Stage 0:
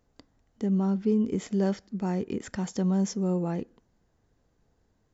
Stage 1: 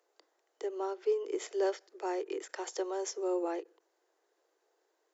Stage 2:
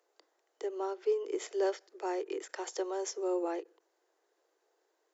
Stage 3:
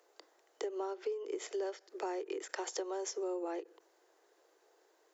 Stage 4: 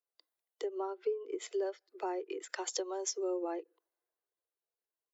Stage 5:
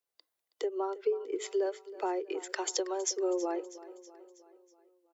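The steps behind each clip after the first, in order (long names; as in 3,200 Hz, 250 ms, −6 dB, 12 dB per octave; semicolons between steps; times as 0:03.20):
Butterworth high-pass 330 Hz 96 dB per octave; every ending faded ahead of time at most 360 dB per second
no processing that can be heard
downward compressor 6 to 1, threshold −43 dBFS, peak gain reduction 16.5 dB; level +7 dB
spectral dynamics exaggerated over time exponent 1.5; multiband upward and downward expander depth 40%; level +3.5 dB
repeating echo 322 ms, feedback 54%, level −17 dB; level +4 dB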